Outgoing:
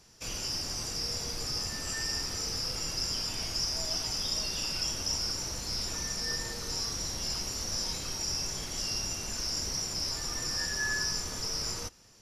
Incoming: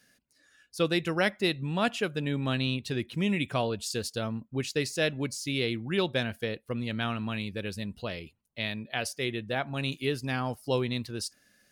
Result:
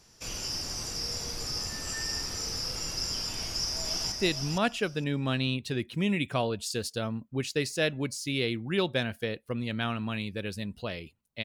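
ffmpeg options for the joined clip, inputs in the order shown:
ffmpeg -i cue0.wav -i cue1.wav -filter_complex "[0:a]apad=whole_dur=11.44,atrim=end=11.44,atrim=end=4.122[link_01];[1:a]atrim=start=1.318:end=8.64[link_02];[link_01][link_02]acrossfade=duration=0.004:curve1=hsin:curve2=hsin,asplit=2[link_03][link_04];[link_04]afade=type=in:start_time=3.39:duration=0.01,afade=type=out:start_time=4.12:duration=0.01,aecho=0:1:460|920|1380:0.595662|0.0893493|0.0134024[link_05];[link_03][link_05]amix=inputs=2:normalize=0" out.wav

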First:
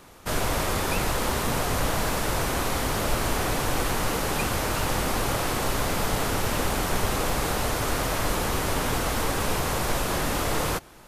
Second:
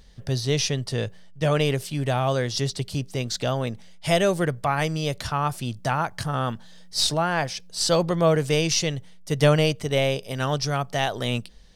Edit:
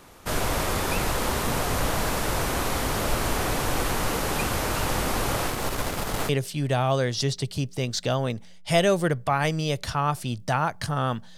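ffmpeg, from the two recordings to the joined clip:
ffmpeg -i cue0.wav -i cue1.wav -filter_complex "[0:a]asettb=1/sr,asplit=3[link_01][link_02][link_03];[link_01]atrim=end=5.474[link_04];[link_02]atrim=start=5.47:end=6.29,asetpts=PTS-STARTPTS,afade=type=in:duration=0.004:curve=qsin,afade=type=out:start_time=0.816:duration=0.004:curve=qsin,aeval=exprs='if(lt(val(0),0),0.447*val(0),val(0))':channel_layout=same[link_05];[link_03]atrim=start=6.286[link_06];[link_04][link_05]acrossfade=duration=0.004:curve1=hsin:curve2=qsin[link_07];[link_07][link_06]acrossfade=duration=0.004:curve1=qsin:curve2=hsin,apad=whole_dur=11.37,atrim=end=11.37,atrim=end=6.292[link_08];[1:a]atrim=start=1.658:end=6.74[link_09];[link_08][link_09]acrossfade=duration=0.004:curve1=hsin:curve2=hsin" out.wav

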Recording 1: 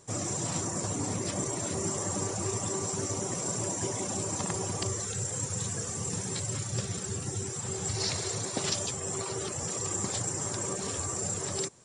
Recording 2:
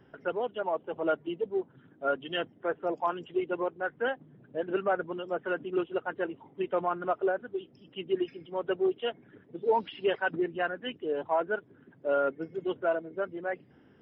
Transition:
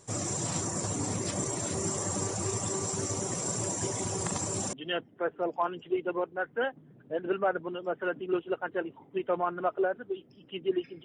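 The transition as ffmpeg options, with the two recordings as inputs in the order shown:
ffmpeg -i cue0.wav -i cue1.wav -filter_complex "[0:a]apad=whole_dur=11.04,atrim=end=11.04,asplit=2[link_01][link_02];[link_01]atrim=end=4.042[link_03];[link_02]atrim=start=4.038:end=4.732,asetpts=PTS-STARTPTS,areverse[link_04];[1:a]atrim=start=2.168:end=8.48[link_05];[link_03][link_04]acrossfade=duration=0.004:curve1=hsin:curve2=hsin[link_06];[link_06][link_05]acrossfade=duration=0.004:curve1=hsin:curve2=hsin" out.wav

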